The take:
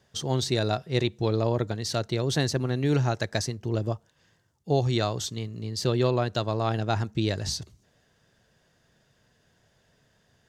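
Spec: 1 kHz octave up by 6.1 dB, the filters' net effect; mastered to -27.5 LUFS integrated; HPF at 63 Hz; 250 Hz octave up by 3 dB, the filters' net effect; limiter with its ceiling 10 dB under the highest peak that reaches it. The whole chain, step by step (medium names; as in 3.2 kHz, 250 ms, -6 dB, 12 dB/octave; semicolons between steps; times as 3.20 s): high-pass 63 Hz; peaking EQ 250 Hz +3.5 dB; peaking EQ 1 kHz +8.5 dB; trim +2 dB; peak limiter -15 dBFS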